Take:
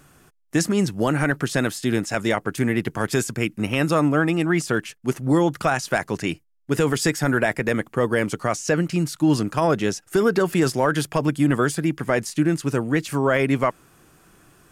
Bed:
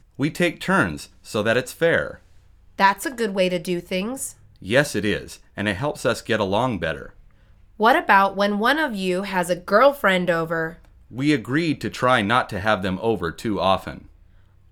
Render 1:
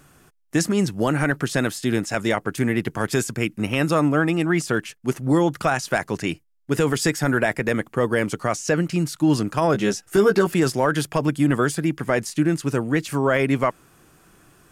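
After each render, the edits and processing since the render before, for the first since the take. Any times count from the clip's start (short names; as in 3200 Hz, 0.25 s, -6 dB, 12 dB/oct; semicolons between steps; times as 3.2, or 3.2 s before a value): 9.73–10.47 doubler 15 ms -4 dB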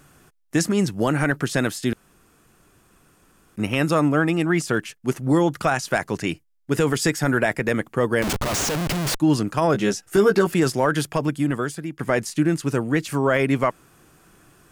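1.93–3.56 room tone; 8.22–9.2 Schmitt trigger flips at -35.5 dBFS; 11.02–11.99 fade out, to -11 dB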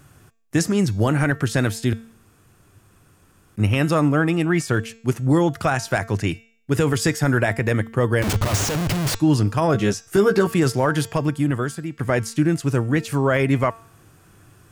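bell 100 Hz +14.5 dB 0.58 oct; de-hum 226.7 Hz, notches 35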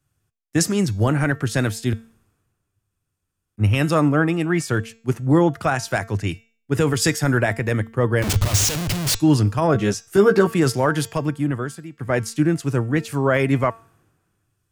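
three-band expander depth 70%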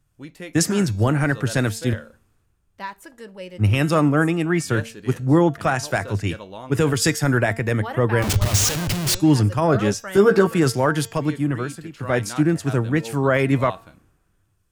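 add bed -16 dB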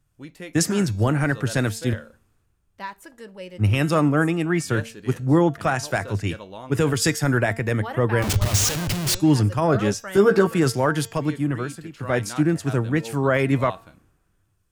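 gain -1.5 dB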